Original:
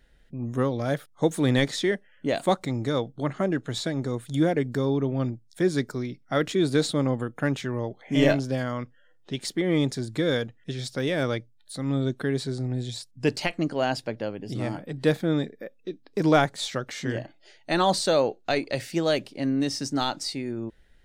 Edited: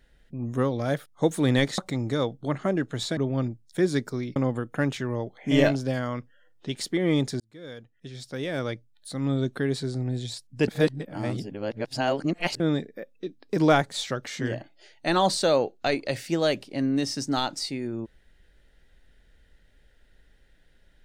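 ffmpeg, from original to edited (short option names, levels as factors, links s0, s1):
-filter_complex "[0:a]asplit=7[s0][s1][s2][s3][s4][s5][s6];[s0]atrim=end=1.782[s7];[s1]atrim=start=2.528:end=3.922[s8];[s2]atrim=start=4.988:end=6.182[s9];[s3]atrim=start=6.998:end=10.04,asetpts=PTS-STARTPTS,afade=t=out:st=3.038:d=0.004:c=hsin[s10];[s4]atrim=start=10.04:end=13.322,asetpts=PTS-STARTPTS,afade=t=in:d=1.82[s11];[s5]atrim=start=13.318:end=15.242,asetpts=PTS-STARTPTS,areverse[s12];[s6]atrim=start=15.238[s13];[s7][s8]acrossfade=d=0.004:c1=hsin:c2=hsin[s14];[s14][s9]acrossfade=d=0.004:c1=hsin:c2=hsin[s15];[s10][s11]concat=n=2:v=0:a=1[s16];[s15][s16]acrossfade=d=0.004:c1=hsin:c2=hsin[s17];[s17][s12]acrossfade=d=0.004:c1=hsin:c2=hsin[s18];[s18][s13]acrossfade=d=0.004:c1=hsin:c2=hsin"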